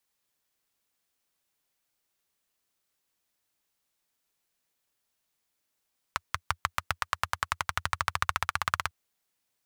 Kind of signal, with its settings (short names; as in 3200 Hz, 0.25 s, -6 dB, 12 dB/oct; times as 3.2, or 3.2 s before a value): single-cylinder engine model, changing speed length 2.75 s, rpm 600, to 2100, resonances 86/1200 Hz